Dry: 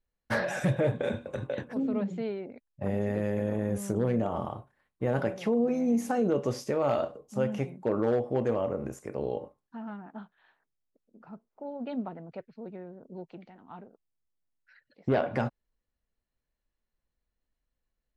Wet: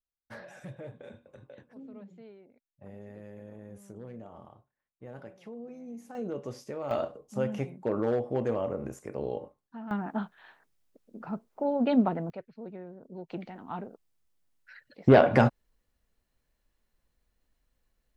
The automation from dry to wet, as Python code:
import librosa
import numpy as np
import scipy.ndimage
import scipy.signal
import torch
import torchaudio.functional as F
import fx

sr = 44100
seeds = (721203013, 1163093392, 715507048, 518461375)

y = fx.gain(x, sr, db=fx.steps((0.0, -17.0), (6.15, -9.0), (6.91, -1.5), (9.91, 10.5), (12.3, -0.5), (13.3, 8.5)))